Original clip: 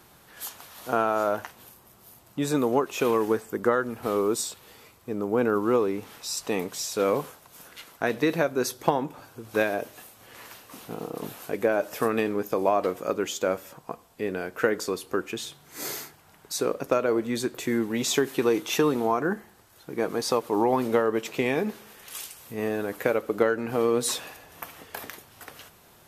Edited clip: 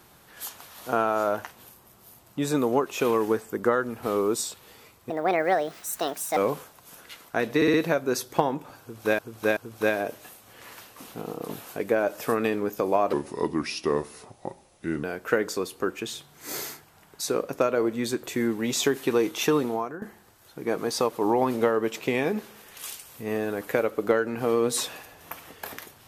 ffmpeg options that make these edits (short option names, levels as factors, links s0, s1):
-filter_complex "[0:a]asplit=11[s0][s1][s2][s3][s4][s5][s6][s7][s8][s9][s10];[s0]atrim=end=5.104[s11];[s1]atrim=start=5.1:end=7.04,asetpts=PTS-STARTPTS,asetrate=67473,aresample=44100[s12];[s2]atrim=start=7.036:end=8.292[s13];[s3]atrim=start=8.228:end=8.292[s14];[s4]atrim=start=8.228:end=8.292[s15];[s5]atrim=start=8.228:end=9.682[s16];[s6]atrim=start=9.298:end=9.682[s17];[s7]atrim=start=9.298:end=12.864[s18];[s8]atrim=start=12.86:end=14.35,asetpts=PTS-STARTPTS,asetrate=34398,aresample=44100,atrim=end_sample=84242,asetpts=PTS-STARTPTS[s19];[s9]atrim=start=14.346:end=19.33,asetpts=PTS-STARTPTS,afade=t=out:st=4.554:d=0.43:silence=0.125893[s20];[s10]atrim=start=19.33,asetpts=PTS-STARTPTS,afade=t=in:d=0.004:c=hsin:silence=0.125893[s21];[s11][s12]acrossfade=d=0.004:c1=hsin:c2=hsin[s22];[s22][s13]acrossfade=d=0.004:c1=hsin:c2=hsin[s23];[s23][s14]acrossfade=d=0.004:c1=hsin:c2=hsin[s24];[s24][s15]acrossfade=d=0.004:c1=hsin:c2=hsin[s25];[s25][s16]acrossfade=d=0.004:c1=hsin:c2=hsin[s26];[s26][s17]acrossfade=d=0.004:c1=hsin:c2=hsin[s27];[s27][s18]acrossfade=d=0.004:c1=hsin:c2=hsin[s28];[s28][s19]acrossfade=d=0.004:c1=hsin:c2=hsin[s29];[s20][s21]concat=n=2:v=0:a=1[s30];[s29][s30]acrossfade=d=0.004:c1=hsin:c2=hsin"